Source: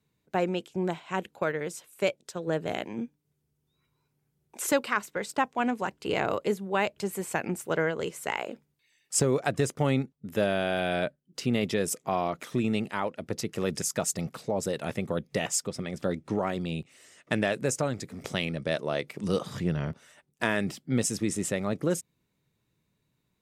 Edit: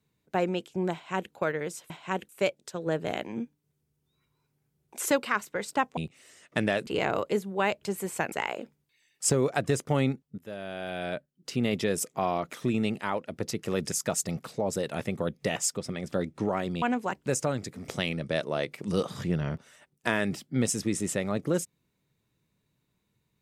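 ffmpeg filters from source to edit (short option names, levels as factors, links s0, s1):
-filter_complex "[0:a]asplit=9[s0][s1][s2][s3][s4][s5][s6][s7][s8];[s0]atrim=end=1.902[s9];[s1]atrim=start=0.928:end=1.322[s10];[s2]atrim=start=1.898:end=5.582[s11];[s3]atrim=start=16.718:end=17.622[s12];[s4]atrim=start=6.018:end=7.472[s13];[s5]atrim=start=8.218:end=10.28,asetpts=PTS-STARTPTS,afade=t=out:st=2.058:d=0.004:c=hsin:silence=0.11885[s14];[s6]atrim=start=10.28:end=16.722,asetpts=PTS-STARTPTS,afade=t=in:d=1.38:silence=0.11885[s15];[s7]atrim=start=5.578:end=6.022[s16];[s8]atrim=start=17.618[s17];[s9][s10]acrossfade=d=0.004:c1=hsin:c2=hsin[s18];[s18][s11]acrossfade=d=0.004:c1=hsin:c2=hsin[s19];[s19][s12]acrossfade=d=0.004:c1=hsin:c2=hsin[s20];[s20][s13]acrossfade=d=0.004:c1=hsin:c2=hsin[s21];[s14][s15]concat=n=2:v=0:a=1[s22];[s21][s22]acrossfade=d=0.004:c1=hsin:c2=hsin[s23];[s23][s16]acrossfade=d=0.004:c1=hsin:c2=hsin[s24];[s24][s17]acrossfade=d=0.004:c1=hsin:c2=hsin"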